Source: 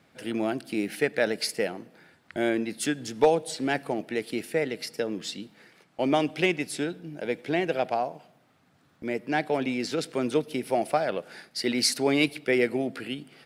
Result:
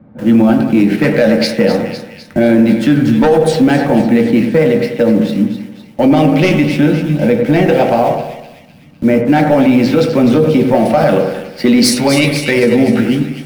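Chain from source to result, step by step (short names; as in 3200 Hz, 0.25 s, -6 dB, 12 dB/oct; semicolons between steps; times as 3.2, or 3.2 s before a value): low-pass opened by the level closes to 850 Hz, open at -19.5 dBFS; 11.93–12.63 bell 280 Hz -8.5 dB 1.7 oct; in parallel at -9 dB: bit-crush 7-bit; on the sum: flange 1.5 Hz, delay 8.9 ms, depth 7.9 ms, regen -76%; soft clip -20 dBFS, distortion -14 dB; split-band echo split 2100 Hz, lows 95 ms, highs 0.253 s, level -9 dB; on a send at -2 dB: reverb RT60 0.20 s, pre-delay 3 ms; on the sum: maximiser +18 dB; gain -1 dB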